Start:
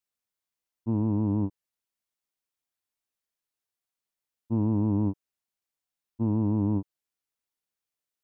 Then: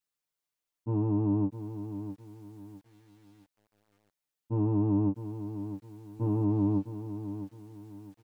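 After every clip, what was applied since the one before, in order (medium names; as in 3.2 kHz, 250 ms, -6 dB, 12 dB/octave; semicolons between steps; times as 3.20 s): comb 6.7 ms, depth 98%; bit-crushed delay 658 ms, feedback 35%, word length 9-bit, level -10.5 dB; trim -3 dB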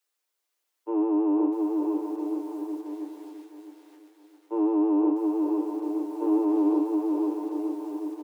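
steep high-pass 300 Hz 96 dB/octave; on a send: bouncing-ball echo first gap 500 ms, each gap 0.85×, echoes 5; on the sum: trim +7.5 dB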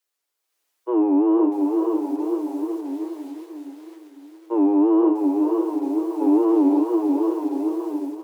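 level rider gain up to 6 dB; echo that smears into a reverb 499 ms, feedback 43%, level -14 dB; wow and flutter 140 cents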